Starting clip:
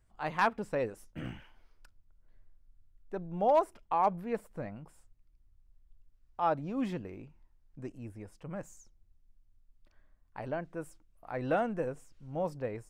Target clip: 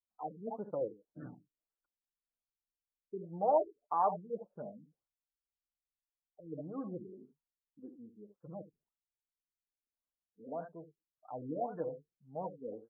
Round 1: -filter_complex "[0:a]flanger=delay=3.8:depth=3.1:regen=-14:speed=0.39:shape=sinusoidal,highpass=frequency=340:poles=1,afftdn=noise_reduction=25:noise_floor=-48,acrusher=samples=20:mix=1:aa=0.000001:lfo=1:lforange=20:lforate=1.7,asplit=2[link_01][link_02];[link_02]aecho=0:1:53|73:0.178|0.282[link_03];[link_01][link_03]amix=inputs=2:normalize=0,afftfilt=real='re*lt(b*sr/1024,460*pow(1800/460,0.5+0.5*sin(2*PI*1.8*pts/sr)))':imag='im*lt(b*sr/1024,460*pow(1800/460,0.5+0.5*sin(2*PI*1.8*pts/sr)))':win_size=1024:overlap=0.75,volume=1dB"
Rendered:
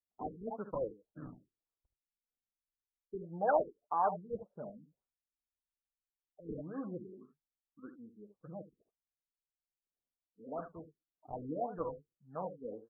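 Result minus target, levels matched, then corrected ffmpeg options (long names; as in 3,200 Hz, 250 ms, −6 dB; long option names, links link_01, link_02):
sample-and-hold swept by an LFO: distortion +11 dB
-filter_complex "[0:a]flanger=delay=3.8:depth=3.1:regen=-14:speed=0.39:shape=sinusoidal,highpass=frequency=340:poles=1,afftdn=noise_reduction=25:noise_floor=-48,acrusher=samples=8:mix=1:aa=0.000001:lfo=1:lforange=8:lforate=1.7,asplit=2[link_01][link_02];[link_02]aecho=0:1:53|73:0.178|0.282[link_03];[link_01][link_03]amix=inputs=2:normalize=0,afftfilt=real='re*lt(b*sr/1024,460*pow(1800/460,0.5+0.5*sin(2*PI*1.8*pts/sr)))':imag='im*lt(b*sr/1024,460*pow(1800/460,0.5+0.5*sin(2*PI*1.8*pts/sr)))':win_size=1024:overlap=0.75,volume=1dB"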